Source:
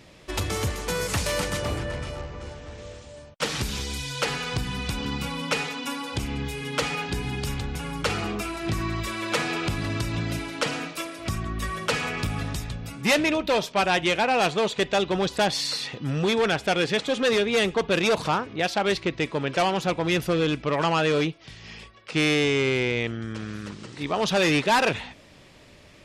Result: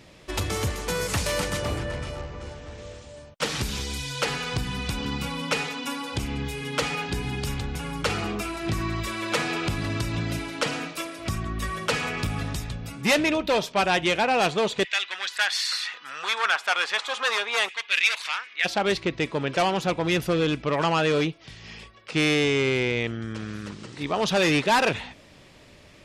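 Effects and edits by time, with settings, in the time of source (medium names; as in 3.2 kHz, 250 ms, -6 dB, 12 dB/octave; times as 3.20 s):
14.83–18.64 s: LFO high-pass saw down 0.61 Hz -> 0.1 Hz 950–2200 Hz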